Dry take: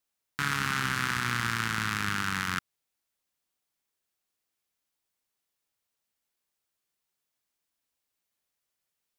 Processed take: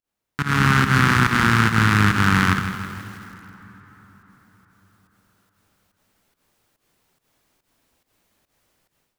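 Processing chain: low shelf 460 Hz +7 dB; notches 60/120/180 Hz; in parallel at -1 dB: limiter -17 dBFS, peak gain reduction 7.5 dB; on the sum: pump 142 bpm, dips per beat 1, -21 dB, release 0.126 s; high shelf 2800 Hz -8 dB; AGC gain up to 16.5 dB; plate-style reverb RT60 4.9 s, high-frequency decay 0.65×, DRR 13.5 dB; lo-fi delay 0.16 s, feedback 55%, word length 6-bit, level -10.5 dB; gain -1 dB

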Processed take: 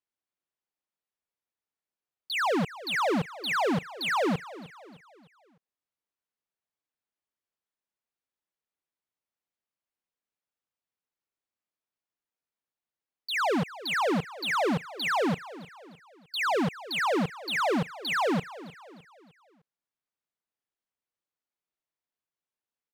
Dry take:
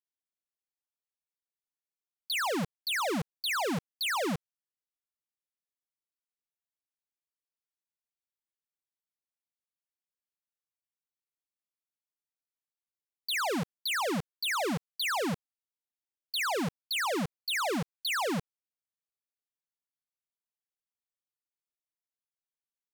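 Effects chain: LPF 1900 Hz 6 dB/oct; low shelf 110 Hz -6.5 dB; on a send: feedback echo 0.305 s, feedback 45%, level -17 dB; on the sum: gain +6 dB

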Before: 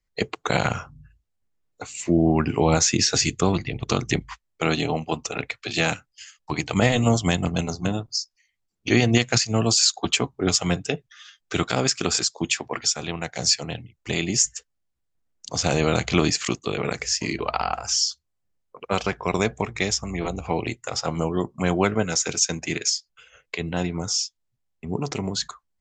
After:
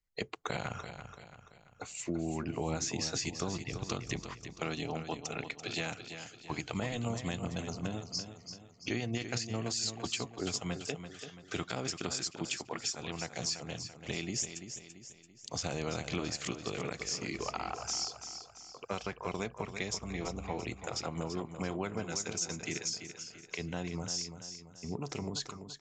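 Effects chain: compressor 3:1, threshold -26 dBFS, peak gain reduction 10.5 dB; feedback echo 0.337 s, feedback 45%, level -9.5 dB; gain -8 dB

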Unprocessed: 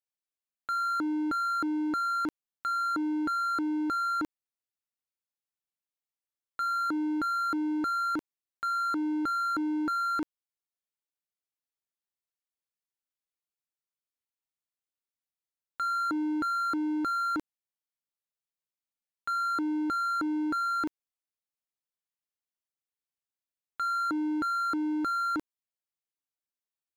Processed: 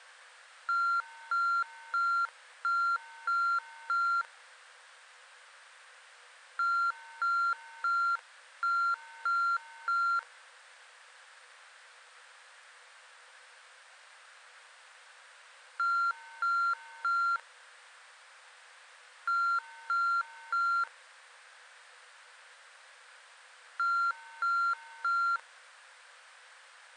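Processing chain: added noise pink -48 dBFS; fifteen-band EQ 630 Hz -8 dB, 1600 Hz +8 dB, 6300 Hz -6 dB; FFT band-pass 480–9600 Hz; gain -4.5 dB

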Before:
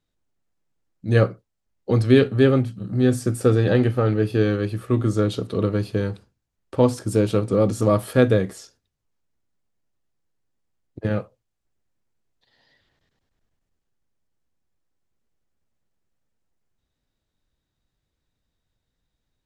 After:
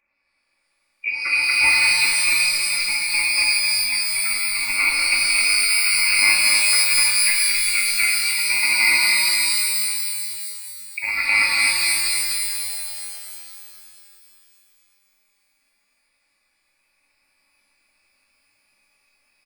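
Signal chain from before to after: HPF 89 Hz; feedback echo 0.243 s, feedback 46%, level -4 dB; inverted band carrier 2600 Hz; comb 3.5 ms, depth 61%; negative-ratio compressor -26 dBFS, ratio -0.5; shimmer reverb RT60 2.7 s, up +12 st, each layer -2 dB, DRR -2.5 dB

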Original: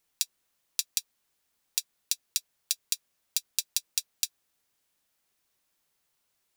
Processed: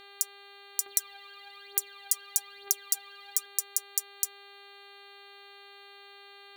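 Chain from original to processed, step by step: inverse Chebyshev band-stop 160–3400 Hz, stop band 40 dB; buzz 400 Hz, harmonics 11, -54 dBFS -1 dB/oct; 0.86–3.46 phaser 1.1 Hz, delay 1.9 ms, feedback 67%; gain +2.5 dB

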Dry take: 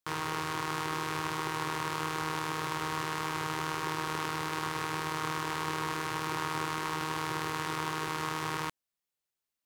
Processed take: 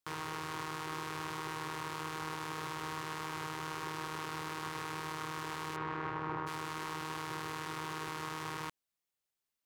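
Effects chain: 5.75–6.46 LPF 2300 Hz -> 1300 Hz 12 dB/oct; limiter -24.5 dBFS, peak gain reduction 8.5 dB; gain -1 dB

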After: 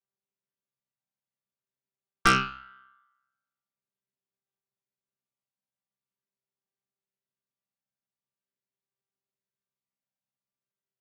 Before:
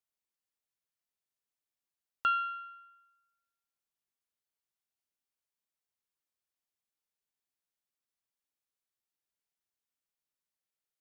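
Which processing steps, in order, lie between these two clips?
chord vocoder bare fifth, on C3; added harmonics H 8 -13 dB, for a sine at -16 dBFS; upward expander 1.5:1, over -42 dBFS; gain +9 dB

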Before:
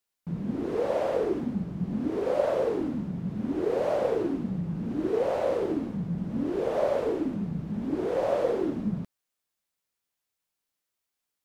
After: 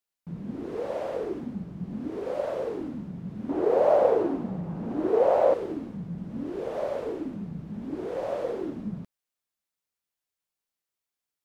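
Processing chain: 3.49–5.54 bell 730 Hz +12.5 dB 2.1 oct; gain -4.5 dB

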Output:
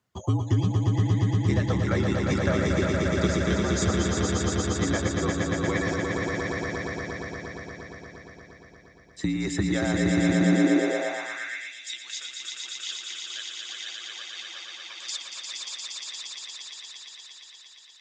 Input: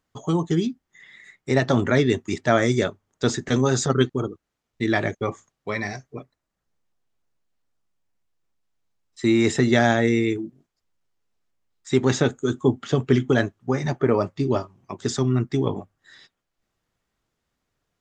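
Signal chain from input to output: reverb removal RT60 1.6 s; compressor, threshold -26 dBFS, peak gain reduction 13 dB; swelling echo 0.117 s, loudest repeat 5, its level -4 dB; frequency shift -53 Hz; high-pass sweep 100 Hz -> 3000 Hz, 10.24–11.77

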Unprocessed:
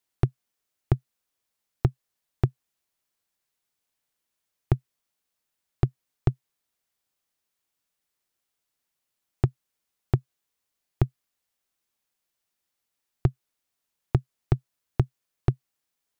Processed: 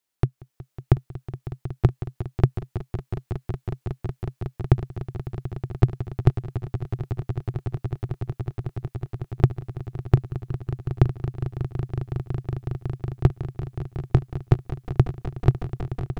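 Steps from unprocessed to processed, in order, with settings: AGC gain up to 6 dB; swelling echo 0.184 s, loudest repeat 8, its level -13.5 dB

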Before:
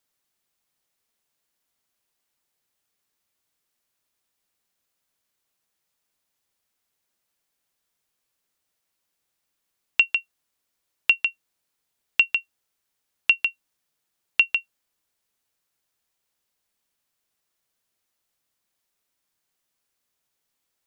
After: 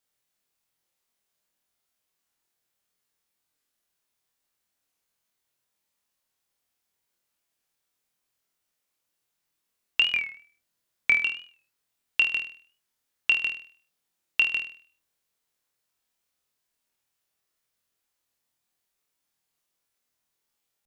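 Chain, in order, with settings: 10.04–11.24 frequency shift -430 Hz; flutter echo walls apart 4.3 m, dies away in 0.45 s; record warp 45 rpm, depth 100 cents; gain -4.5 dB

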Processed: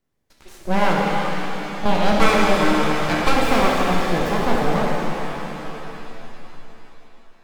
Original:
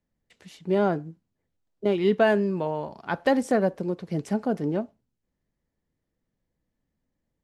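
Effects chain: added harmonics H 8 -23 dB, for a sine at -8.5 dBFS; full-wave rectifier; shimmer reverb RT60 3.7 s, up +7 st, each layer -8 dB, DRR -3.5 dB; gain +5 dB

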